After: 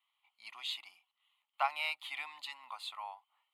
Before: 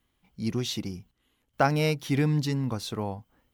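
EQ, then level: HPF 930 Hz 24 dB/oct; air absorption 55 m; fixed phaser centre 1600 Hz, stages 6; 0.0 dB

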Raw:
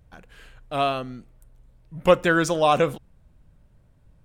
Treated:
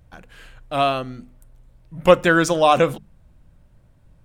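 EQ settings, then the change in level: notches 50/100/150/200/250 Hz; notch 430 Hz, Q 12; +4.0 dB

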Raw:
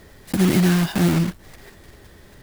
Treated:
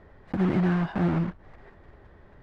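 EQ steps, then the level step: LPF 1000 Hz 12 dB/oct; low shelf 210 Hz -7.5 dB; bell 330 Hz -8.5 dB 2.9 oct; +4.0 dB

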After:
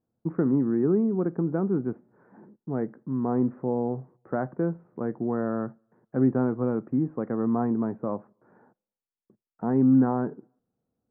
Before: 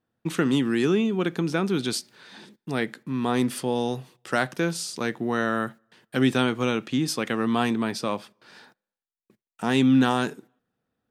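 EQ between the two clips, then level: Gaussian blur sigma 8.5 samples; 0.0 dB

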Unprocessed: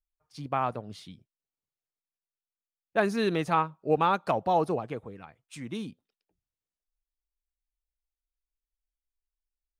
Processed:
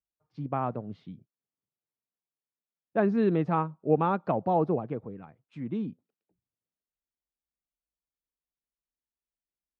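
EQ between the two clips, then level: HPF 150 Hz 12 dB/oct; tape spacing loss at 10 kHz 42 dB; low shelf 290 Hz +10 dB; 0.0 dB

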